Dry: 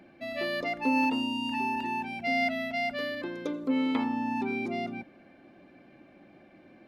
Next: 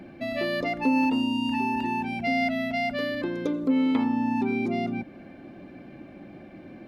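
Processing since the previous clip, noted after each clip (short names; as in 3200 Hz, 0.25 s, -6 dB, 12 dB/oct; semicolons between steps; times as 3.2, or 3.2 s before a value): low shelf 330 Hz +9 dB; compressor 1.5:1, threshold -38 dBFS, peak gain reduction 7.5 dB; gain +6 dB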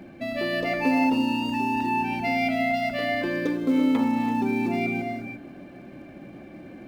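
in parallel at -10.5 dB: short-mantissa float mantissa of 2-bit; on the sum: non-linear reverb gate 0.37 s rising, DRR 4 dB; gain -2 dB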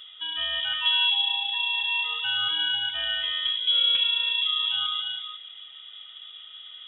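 high shelf 2800 Hz -8.5 dB; inverted band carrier 3600 Hz; gain -1 dB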